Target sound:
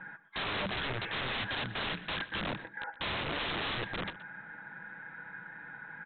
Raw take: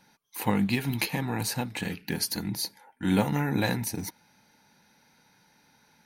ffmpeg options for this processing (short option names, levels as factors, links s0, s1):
-filter_complex "[0:a]aecho=1:1:6.1:0.52,asplit=2[s0][s1];[s1]alimiter=limit=0.119:level=0:latency=1:release=114,volume=1.26[s2];[s0][s2]amix=inputs=2:normalize=0,acompressor=threshold=0.0316:ratio=8,lowpass=f=1600:t=q:w=8.8,aresample=8000,aeval=exprs='(mod(31.6*val(0)+1,2)-1)/31.6':c=same,aresample=44100,asplit=2[s3][s4];[s4]adelay=122.4,volume=0.158,highshelf=f=4000:g=-2.76[s5];[s3][s5]amix=inputs=2:normalize=0"